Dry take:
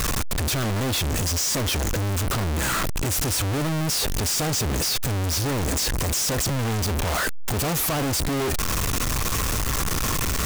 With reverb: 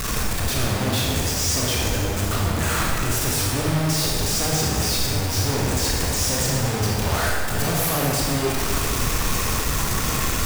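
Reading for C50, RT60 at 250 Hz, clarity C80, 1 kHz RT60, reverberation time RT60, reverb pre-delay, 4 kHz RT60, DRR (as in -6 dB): -1.5 dB, 2.0 s, 0.5 dB, 2.1 s, 2.1 s, 24 ms, 1.7 s, -4.0 dB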